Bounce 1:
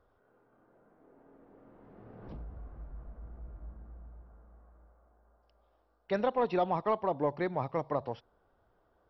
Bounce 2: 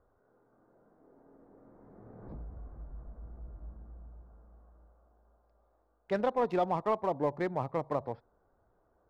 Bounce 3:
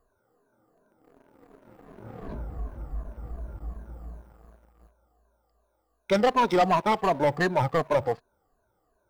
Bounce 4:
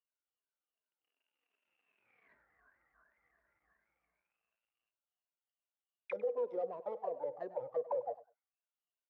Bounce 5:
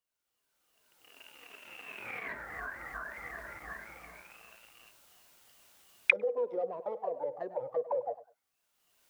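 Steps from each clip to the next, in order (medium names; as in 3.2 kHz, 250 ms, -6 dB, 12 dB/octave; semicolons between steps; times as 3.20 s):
local Wiener filter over 15 samples
drifting ripple filter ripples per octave 1.5, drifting -2.7 Hz, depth 16 dB; treble shelf 2.5 kHz +11.5 dB; waveshaping leveller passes 2
auto-wah 490–2900 Hz, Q 19, down, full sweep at -20 dBFS; peak limiter -29 dBFS, peak gain reduction 11.5 dB; feedback delay 99 ms, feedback 16%, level -18 dB; trim +1 dB
recorder AGC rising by 25 dB/s; trim +3.5 dB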